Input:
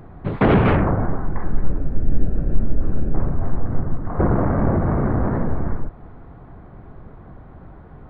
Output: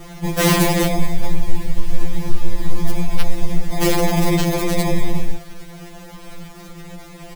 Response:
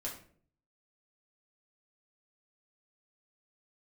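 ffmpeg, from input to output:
-filter_complex "[0:a]acrossover=split=310[link_01][link_02];[link_02]acrusher=samples=31:mix=1:aa=0.000001[link_03];[link_01][link_03]amix=inputs=2:normalize=0,acrossover=split=330|3000[link_04][link_05][link_06];[link_04]acompressor=threshold=-17dB:ratio=4[link_07];[link_07][link_05][link_06]amix=inputs=3:normalize=0,acrusher=bits=6:mix=0:aa=0.000001,atempo=1.1,aeval=exprs='0.251*(abs(mod(val(0)/0.251+3,4)-2)-1)':channel_layout=same,adynamicequalizer=threshold=0.00316:dfrequency=2400:dqfactor=6:tfrequency=2400:tqfactor=6:attack=5:release=100:ratio=0.375:range=1.5:mode=boostabove:tftype=bell,aeval=exprs='(mod(3.98*val(0)+1,2)-1)/3.98':channel_layout=same,afftfilt=real='re*2.83*eq(mod(b,8),0)':imag='im*2.83*eq(mod(b,8),0)':win_size=2048:overlap=0.75,volume=6dB"

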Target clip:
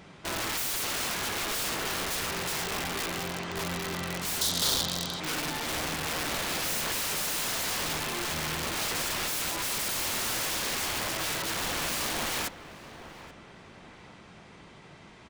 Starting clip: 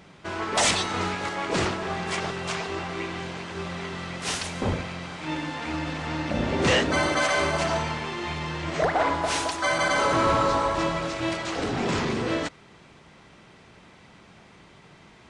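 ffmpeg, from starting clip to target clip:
ffmpeg -i in.wav -filter_complex "[0:a]aeval=exprs='(mod(21.1*val(0)+1,2)-1)/21.1':channel_layout=same,asettb=1/sr,asplit=3[link_01][link_02][link_03];[link_01]atrim=end=4.414[link_04];[link_02]atrim=start=4.41:end=5.2,asetpts=PTS-STARTPTS,afade=type=in:duration=0.004:curve=qsin,afade=type=out:start_time=0.786:duration=0.004:curve=qsin,highshelf=frequency=3000:width_type=q:width=3:gain=6.5[link_05];[link_03]atrim=start=5.196[link_06];[link_04][link_05]acrossfade=duration=0.004:curve1=hsin:curve2=qsin[link_07];[link_07][link_06]acrossfade=duration=0.004:curve1=qsin:curve2=hsin,asplit=2[link_08][link_09];[link_09]adelay=831,lowpass=frequency=1800:poles=1,volume=-13dB,asplit=2[link_10][link_11];[link_11]adelay=831,lowpass=frequency=1800:poles=1,volume=0.46,asplit=2[link_12][link_13];[link_13]adelay=831,lowpass=frequency=1800:poles=1,volume=0.46,asplit=2[link_14][link_15];[link_15]adelay=831,lowpass=frequency=1800:poles=1,volume=0.46,asplit=2[link_16][link_17];[link_17]adelay=831,lowpass=frequency=1800:poles=1,volume=0.46[link_18];[link_08][link_10][link_12][link_14][link_16][link_18]amix=inputs=6:normalize=0" out.wav

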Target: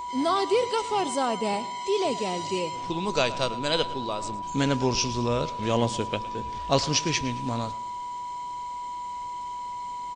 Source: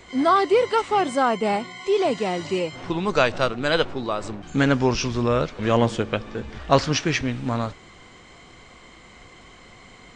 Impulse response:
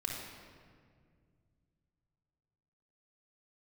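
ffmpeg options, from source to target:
-filter_complex "[0:a]highshelf=frequency=2200:gain=9.5,aeval=exprs='val(0)+0.0708*sin(2*PI*980*n/s)':channel_layout=same,equalizer=frequency=1600:width=1.2:gain=-9,asplit=2[link_01][link_02];[link_02]aecho=0:1:110|220|330:0.141|0.0579|0.0237[link_03];[link_01][link_03]amix=inputs=2:normalize=0,volume=-5dB"

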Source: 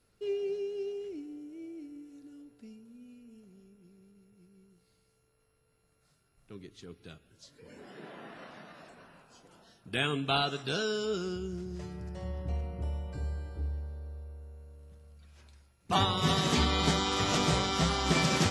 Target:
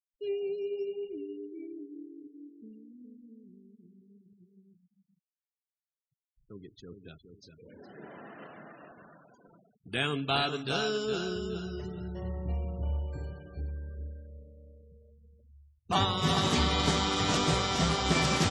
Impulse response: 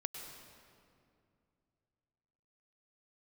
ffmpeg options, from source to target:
-af "aecho=1:1:415|830|1245|1660:0.447|0.152|0.0516|0.0176,afftfilt=real='re*gte(hypot(re,im),0.00398)':imag='im*gte(hypot(re,im),0.00398)':win_size=1024:overlap=0.75"

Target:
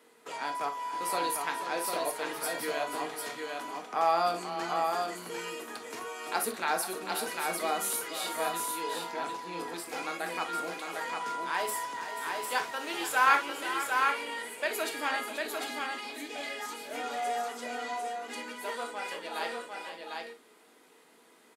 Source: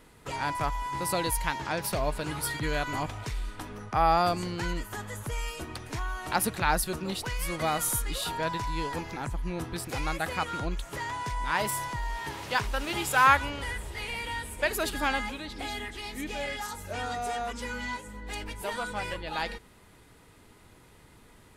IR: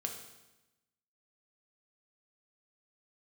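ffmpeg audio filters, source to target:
-filter_complex "[0:a]highpass=frequency=270:width=0.5412,highpass=frequency=270:width=1.3066,aecho=1:1:486|750:0.282|0.631[link_01];[1:a]atrim=start_sample=2205,atrim=end_sample=3087[link_02];[link_01][link_02]afir=irnorm=-1:irlink=0,volume=-3dB"

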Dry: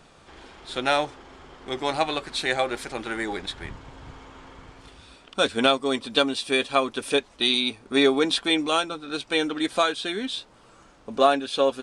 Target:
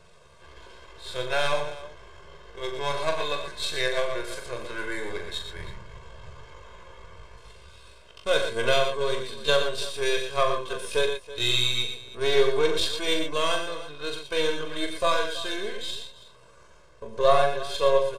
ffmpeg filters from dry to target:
ffmpeg -i in.wav -filter_complex "[0:a]aeval=exprs='if(lt(val(0),0),0.447*val(0),val(0))':channel_layout=same,atempo=0.65,aecho=1:1:1.9:0.98,asplit=2[link_01][link_02];[link_02]aecho=0:1:41|88|119|139|326:0.447|0.237|0.398|0.112|0.15[link_03];[link_01][link_03]amix=inputs=2:normalize=0,aresample=32000,aresample=44100,volume=-3.5dB" out.wav

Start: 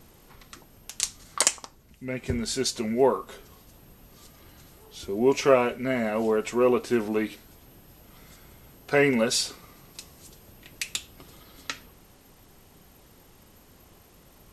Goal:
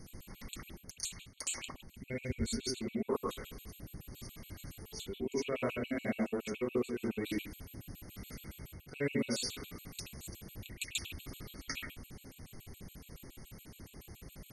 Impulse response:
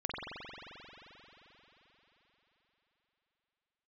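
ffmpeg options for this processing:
-filter_complex "[0:a]equalizer=frequency=870:width=0.6:gain=-10.5,areverse,acompressor=threshold=-37dB:ratio=16,areverse[link_01];[1:a]atrim=start_sample=2205,afade=type=out:start_time=0.18:duration=0.01,atrim=end_sample=8379,asetrate=34398,aresample=44100[link_02];[link_01][link_02]afir=irnorm=-1:irlink=0,afftfilt=real='re*gt(sin(2*PI*7.1*pts/sr)*(1-2*mod(floor(b*sr/1024/2200),2)),0)':imag='im*gt(sin(2*PI*7.1*pts/sr)*(1-2*mod(floor(b*sr/1024/2200),2)),0)':win_size=1024:overlap=0.75,volume=5dB"

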